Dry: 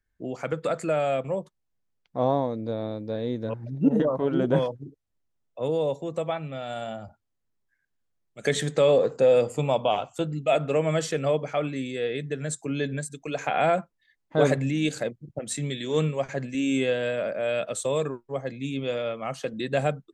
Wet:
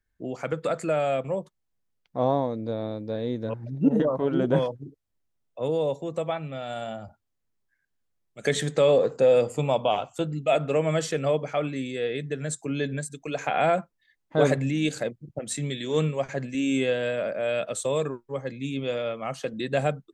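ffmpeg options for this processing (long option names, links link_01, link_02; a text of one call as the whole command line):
ffmpeg -i in.wav -filter_complex "[0:a]asettb=1/sr,asplit=3[link_01][link_02][link_03];[link_01]atrim=end=18.134[link_04];[link_02]atrim=start=18.13:end=18.77,asetpts=PTS-STARTPTS,afade=type=in:duration=0.004:curve=qsin,afade=type=out:start_time=0.636:duration=0.004:curve=qsin,bandreject=frequency=690:width=5.2[link_05];[link_03]atrim=start=18.766[link_06];[link_04][link_05]acrossfade=duration=0.004:curve1=hsin:curve2=qsin[link_07];[link_07][link_06]acrossfade=duration=0.004:curve1=qsin:curve2=hsin" out.wav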